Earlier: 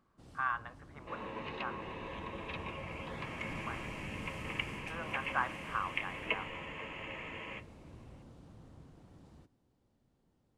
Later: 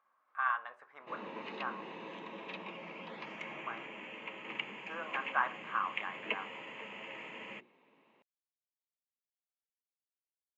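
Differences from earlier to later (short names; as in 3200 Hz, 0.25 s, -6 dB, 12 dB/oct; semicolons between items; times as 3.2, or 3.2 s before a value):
speech: send +7.0 dB; first sound: muted; second sound: send off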